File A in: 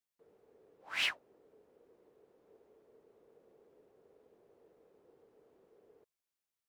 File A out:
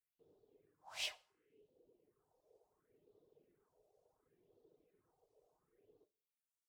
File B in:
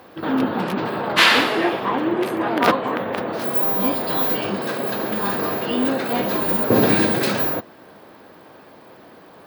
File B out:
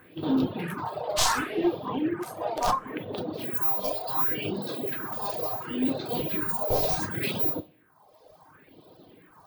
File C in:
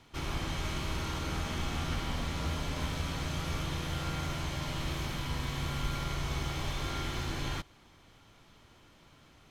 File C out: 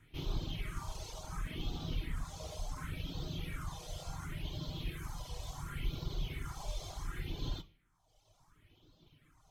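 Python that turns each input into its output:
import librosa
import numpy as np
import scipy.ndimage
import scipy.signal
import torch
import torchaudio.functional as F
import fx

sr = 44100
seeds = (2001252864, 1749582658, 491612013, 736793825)

y = np.minimum(x, 2.0 * 10.0 ** (-13.0 / 20.0) - x)
y = fx.rev_double_slope(y, sr, seeds[0], early_s=0.46, late_s=1.7, knee_db=-28, drr_db=3.0)
y = fx.dereverb_blind(y, sr, rt60_s=1.3)
y = fx.phaser_stages(y, sr, stages=4, low_hz=250.0, high_hz=1900.0, hz=0.7, feedback_pct=45)
y = F.gain(torch.from_numpy(y), -4.5).numpy()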